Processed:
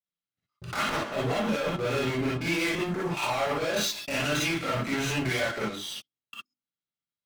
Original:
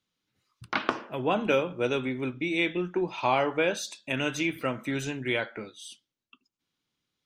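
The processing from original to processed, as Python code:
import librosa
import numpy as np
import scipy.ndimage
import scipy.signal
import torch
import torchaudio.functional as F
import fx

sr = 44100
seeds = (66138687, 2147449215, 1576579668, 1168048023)

y = np.minimum(x, 2.0 * 10.0 ** (-18.5 / 20.0) - x)
y = scipy.signal.sosfilt(scipy.signal.butter(2, 5500.0, 'lowpass', fs=sr, output='sos'), y)
y = fx.peak_eq(y, sr, hz=60.0, db=-6.0, octaves=1.1)
y = fx.hum_notches(y, sr, base_hz=50, count=8)
y = y + 0.3 * np.pad(y, (int(1.5 * sr / 1000.0), 0))[:len(y)]
y = fx.level_steps(y, sr, step_db=19)
y = fx.leveller(y, sr, passes=5)
y = fx.over_compress(y, sr, threshold_db=-28.0, ratio=-1.0)
y = 10.0 ** (-25.5 / 20.0) * np.tanh(y / 10.0 ** (-25.5 / 20.0))
y = fx.rev_gated(y, sr, seeds[0], gate_ms=80, shape='rising', drr_db=-6.5)
y = y * 10.0 ** (-4.5 / 20.0)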